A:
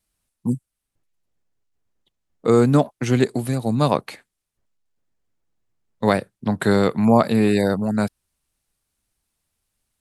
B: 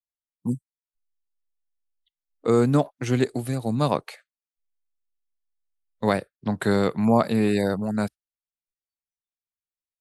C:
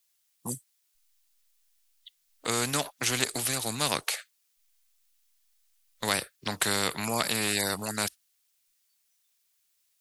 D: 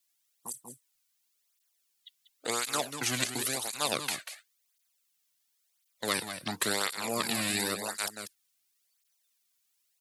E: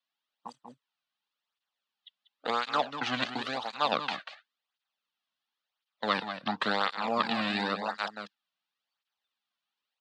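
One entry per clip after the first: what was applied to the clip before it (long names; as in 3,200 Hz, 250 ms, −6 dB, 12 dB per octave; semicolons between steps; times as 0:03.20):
noise reduction from a noise print of the clip's start 28 dB; level −4 dB
tilt shelving filter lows −9 dB, about 1,500 Hz; every bin compressed towards the loudest bin 2 to 1
on a send: single-tap delay 190 ms −9.5 dB; on the sum: through-zero flanger with one copy inverted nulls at 0.94 Hz, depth 2.5 ms
in parallel at −5.5 dB: dead-zone distortion −51 dBFS; on the sum: loudspeaker in its box 200–3,600 Hz, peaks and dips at 200 Hz +4 dB, 370 Hz −10 dB, 820 Hz +5 dB, 1,200 Hz +4 dB, 2,200 Hz −7 dB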